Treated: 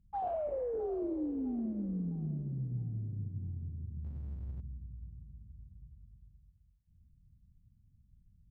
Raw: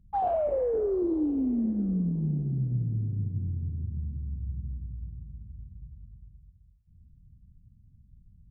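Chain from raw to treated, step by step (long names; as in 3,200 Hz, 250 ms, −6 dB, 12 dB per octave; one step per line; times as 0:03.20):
feedback echo with a high-pass in the loop 658 ms, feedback 41%, high-pass 560 Hz, level −12 dB
0:04.04–0:04.61: power curve on the samples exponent 0.7
level −8.5 dB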